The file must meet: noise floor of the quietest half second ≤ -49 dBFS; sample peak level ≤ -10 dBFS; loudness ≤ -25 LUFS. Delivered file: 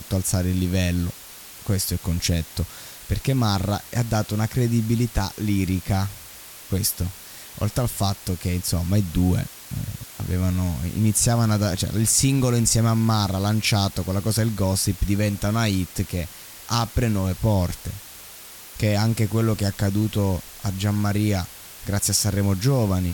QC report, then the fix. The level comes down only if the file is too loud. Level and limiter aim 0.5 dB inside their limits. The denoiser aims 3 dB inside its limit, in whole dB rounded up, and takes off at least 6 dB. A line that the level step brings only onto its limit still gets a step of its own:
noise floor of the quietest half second -42 dBFS: fail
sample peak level -7.5 dBFS: fail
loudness -23.0 LUFS: fail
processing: noise reduction 8 dB, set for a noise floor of -42 dBFS; trim -2.5 dB; peak limiter -10.5 dBFS

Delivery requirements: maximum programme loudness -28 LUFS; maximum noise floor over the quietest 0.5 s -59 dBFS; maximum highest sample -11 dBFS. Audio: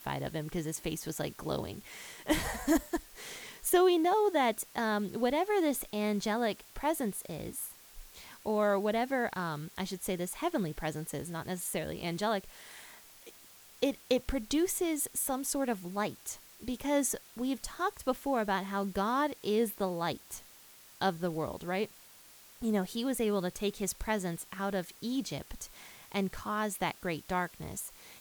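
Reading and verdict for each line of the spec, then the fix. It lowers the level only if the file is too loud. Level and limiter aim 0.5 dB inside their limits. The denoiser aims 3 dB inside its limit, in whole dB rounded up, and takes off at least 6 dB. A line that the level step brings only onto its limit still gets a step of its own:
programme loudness -33.5 LUFS: pass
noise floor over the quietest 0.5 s -56 dBFS: fail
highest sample -14.0 dBFS: pass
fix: noise reduction 6 dB, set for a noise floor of -56 dBFS

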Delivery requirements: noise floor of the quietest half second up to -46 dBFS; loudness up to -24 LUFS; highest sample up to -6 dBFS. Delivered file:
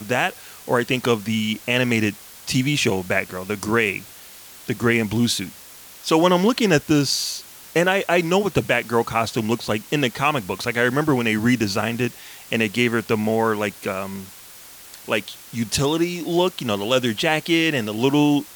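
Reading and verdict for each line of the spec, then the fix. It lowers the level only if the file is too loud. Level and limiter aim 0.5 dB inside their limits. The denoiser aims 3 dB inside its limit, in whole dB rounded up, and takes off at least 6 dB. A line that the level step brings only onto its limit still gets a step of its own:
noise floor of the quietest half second -43 dBFS: fail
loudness -21.0 LUFS: fail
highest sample -5.0 dBFS: fail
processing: trim -3.5 dB

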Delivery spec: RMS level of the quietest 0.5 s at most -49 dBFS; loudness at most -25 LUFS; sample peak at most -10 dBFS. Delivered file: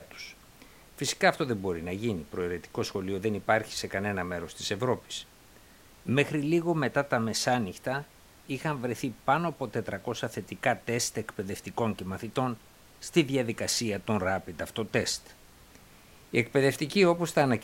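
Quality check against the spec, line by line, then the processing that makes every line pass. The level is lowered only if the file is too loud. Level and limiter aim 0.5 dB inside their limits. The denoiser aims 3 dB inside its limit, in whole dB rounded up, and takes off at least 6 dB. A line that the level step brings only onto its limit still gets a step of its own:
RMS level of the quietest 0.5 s -55 dBFS: pass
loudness -29.5 LUFS: pass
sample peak -8.0 dBFS: fail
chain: peak limiter -10.5 dBFS

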